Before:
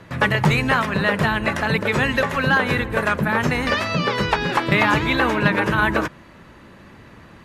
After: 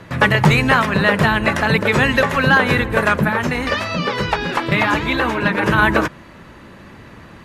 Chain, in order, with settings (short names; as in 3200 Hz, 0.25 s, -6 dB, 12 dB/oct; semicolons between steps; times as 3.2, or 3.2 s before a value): 3.29–5.63 flange 2 Hz, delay 0.7 ms, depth 4.1 ms, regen -48%; gain +4.5 dB